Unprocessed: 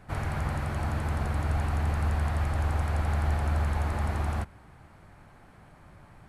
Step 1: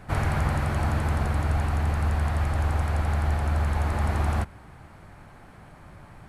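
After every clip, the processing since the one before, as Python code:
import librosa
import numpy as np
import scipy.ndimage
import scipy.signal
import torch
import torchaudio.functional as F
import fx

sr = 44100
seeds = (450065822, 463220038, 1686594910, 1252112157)

y = fx.rider(x, sr, range_db=10, speed_s=0.5)
y = y * librosa.db_to_amplitude(3.5)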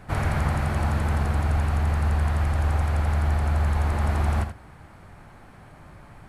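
y = x + 10.0 ** (-9.0 / 20.0) * np.pad(x, (int(80 * sr / 1000.0), 0))[:len(x)]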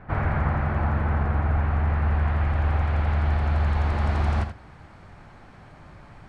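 y = fx.filter_sweep_lowpass(x, sr, from_hz=1800.0, to_hz=5800.0, start_s=1.51, end_s=4.78, q=1.0)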